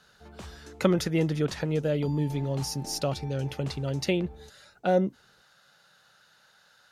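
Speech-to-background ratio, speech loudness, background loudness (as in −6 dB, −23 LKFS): 18.0 dB, −28.5 LKFS, −46.5 LKFS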